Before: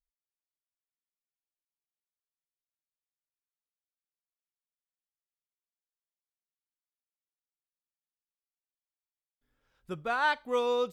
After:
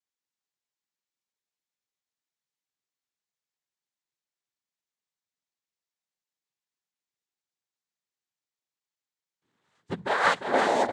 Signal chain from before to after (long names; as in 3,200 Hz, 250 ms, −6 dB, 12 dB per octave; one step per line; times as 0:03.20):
cochlear-implant simulation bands 6
on a send: single-tap delay 349 ms −7.5 dB
on the sum: level +4.5 dB